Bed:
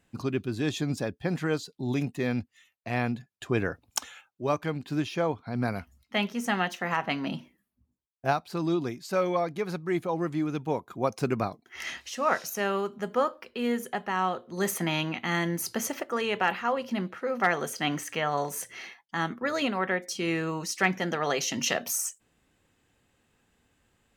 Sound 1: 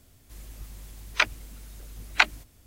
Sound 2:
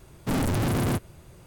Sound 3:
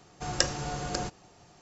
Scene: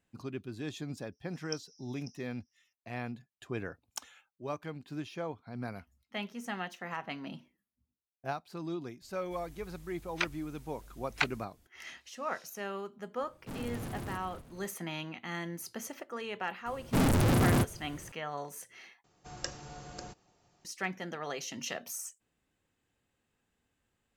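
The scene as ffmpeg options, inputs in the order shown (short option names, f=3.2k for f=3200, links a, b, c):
-filter_complex "[3:a]asplit=2[a][b];[2:a]asplit=2[c][d];[0:a]volume=-10.5dB[e];[a]asuperpass=centerf=5500:order=8:qfactor=5.6[f];[c]asplit=6[g][h][i][j][k][l];[h]adelay=241,afreqshift=-45,volume=-10.5dB[m];[i]adelay=482,afreqshift=-90,volume=-16.9dB[n];[j]adelay=723,afreqshift=-135,volume=-23.3dB[o];[k]adelay=964,afreqshift=-180,volume=-29.6dB[p];[l]adelay=1205,afreqshift=-225,volume=-36dB[q];[g][m][n][o][p][q]amix=inputs=6:normalize=0[r];[e]asplit=2[s][t];[s]atrim=end=19.044[u];[b]atrim=end=1.61,asetpts=PTS-STARTPTS,volume=-12.5dB[v];[t]atrim=start=20.646[w];[f]atrim=end=1.61,asetpts=PTS-STARTPTS,volume=-11dB,afade=t=in:d=0.004:c=hsin,afade=t=out:st=1.606:d=0.004:c=hsin,adelay=1120[x];[1:a]atrim=end=2.66,asetpts=PTS-STARTPTS,volume=-10dB,afade=t=in:d=0.004:c=hsin,afade=t=out:st=2.656:d=0.004:c=hsin,adelay=9010[y];[r]atrim=end=1.46,asetpts=PTS-STARTPTS,volume=-16dB,afade=t=in:d=0.004:c=hsin,afade=t=out:st=1.456:d=0.004:c=hsin,adelay=13200[z];[d]atrim=end=1.46,asetpts=PTS-STARTPTS,volume=-0.5dB,afade=t=in:d=0.004:c=hsin,afade=t=out:st=1.456:d=0.004:c=hsin,adelay=16660[aa];[u][v]acrossfade=d=0.004:c1=hsin:c2=hsin[ab];[ab][w]acrossfade=d=0.004:c1=hsin:c2=hsin[ac];[ac][x][y][z][aa]amix=inputs=5:normalize=0"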